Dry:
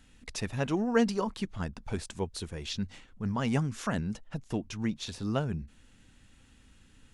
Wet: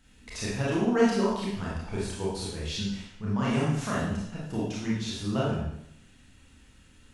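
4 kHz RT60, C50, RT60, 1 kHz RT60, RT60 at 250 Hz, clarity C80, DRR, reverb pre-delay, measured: 0.75 s, -0.5 dB, 0.75 s, 0.75 s, 0.75 s, 3.5 dB, -7.0 dB, 25 ms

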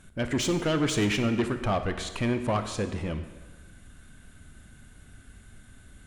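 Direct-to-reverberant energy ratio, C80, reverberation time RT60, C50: 8.5 dB, 11.5 dB, 1.3 s, 10.0 dB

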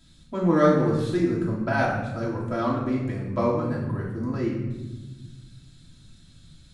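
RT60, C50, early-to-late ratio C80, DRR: 1.1 s, 3.0 dB, 5.5 dB, -6.5 dB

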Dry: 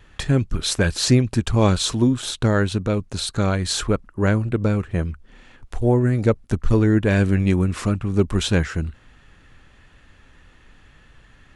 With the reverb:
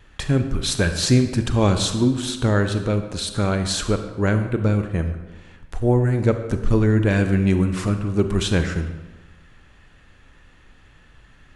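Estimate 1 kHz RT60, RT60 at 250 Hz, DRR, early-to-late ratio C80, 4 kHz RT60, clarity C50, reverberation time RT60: 1.2 s, 1.1 s, 7.5 dB, 10.5 dB, 0.85 s, 8.5 dB, 1.2 s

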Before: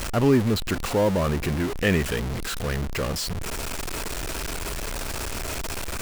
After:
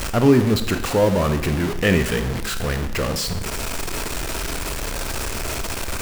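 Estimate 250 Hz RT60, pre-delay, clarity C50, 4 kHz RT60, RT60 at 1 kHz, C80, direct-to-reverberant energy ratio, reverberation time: 0.75 s, 17 ms, 10.0 dB, 0.85 s, 0.90 s, 12.5 dB, 8.0 dB, 0.85 s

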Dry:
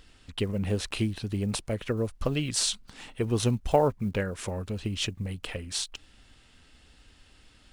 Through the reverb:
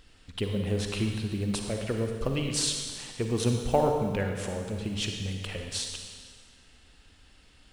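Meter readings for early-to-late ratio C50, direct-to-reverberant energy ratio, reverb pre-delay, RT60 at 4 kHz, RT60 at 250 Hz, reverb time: 3.5 dB, 3.0 dB, 39 ms, 1.7 s, 1.7 s, 1.7 s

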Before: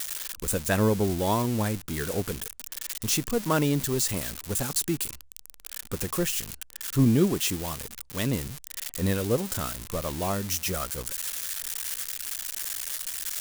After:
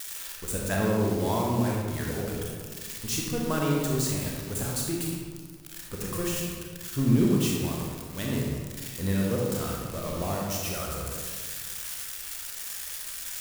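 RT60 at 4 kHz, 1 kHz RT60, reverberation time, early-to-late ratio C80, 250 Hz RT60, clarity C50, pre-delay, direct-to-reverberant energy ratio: 1.0 s, 1.6 s, 1.7 s, 1.5 dB, 2.0 s, -0.5 dB, 27 ms, -2.5 dB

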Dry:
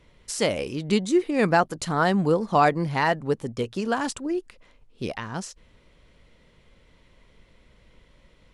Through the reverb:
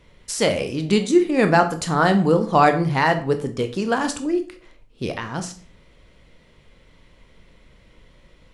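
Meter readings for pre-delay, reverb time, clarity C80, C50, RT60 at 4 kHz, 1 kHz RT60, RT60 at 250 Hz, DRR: 17 ms, 0.45 s, 17.0 dB, 12.5 dB, 0.35 s, 0.40 s, 0.55 s, 7.0 dB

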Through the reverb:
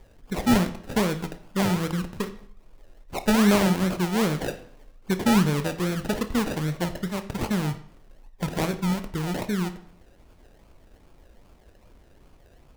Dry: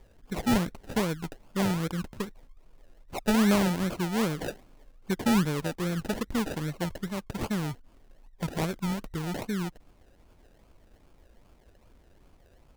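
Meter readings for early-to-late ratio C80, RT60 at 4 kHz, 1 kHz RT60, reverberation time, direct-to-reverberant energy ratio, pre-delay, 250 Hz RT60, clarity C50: 15.5 dB, 0.50 s, 0.60 s, 0.60 s, 8.5 dB, 19 ms, 0.60 s, 12.5 dB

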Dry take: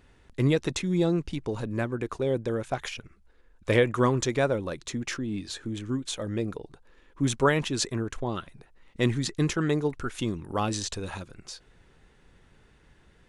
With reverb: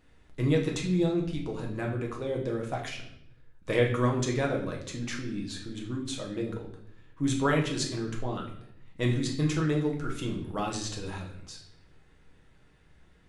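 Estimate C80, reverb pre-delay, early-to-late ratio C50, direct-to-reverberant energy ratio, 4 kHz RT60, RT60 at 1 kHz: 10.5 dB, 6 ms, 7.0 dB, -0.5 dB, 0.60 s, 0.65 s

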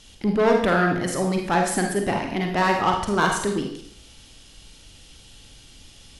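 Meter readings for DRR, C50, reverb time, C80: 1.5 dB, 3.5 dB, 0.60 s, 8.0 dB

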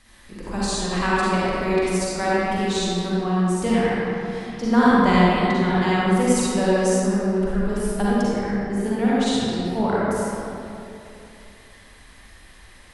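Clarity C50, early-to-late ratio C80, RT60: -7.5 dB, -4.5 dB, 2.8 s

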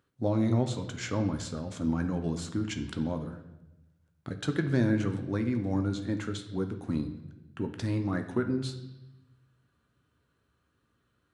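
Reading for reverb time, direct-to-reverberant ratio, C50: 0.95 s, 6.0 dB, 10.0 dB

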